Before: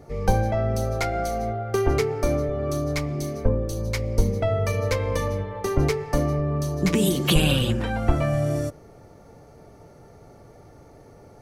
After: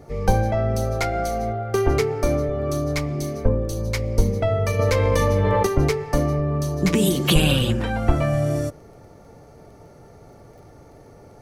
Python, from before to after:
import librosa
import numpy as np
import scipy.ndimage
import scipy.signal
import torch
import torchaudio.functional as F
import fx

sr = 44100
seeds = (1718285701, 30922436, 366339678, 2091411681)

y = fx.dmg_crackle(x, sr, seeds[0], per_s=18.0, level_db=-49.0)
y = fx.env_flatten(y, sr, amount_pct=100, at=(4.79, 5.67))
y = y * 10.0 ** (2.0 / 20.0)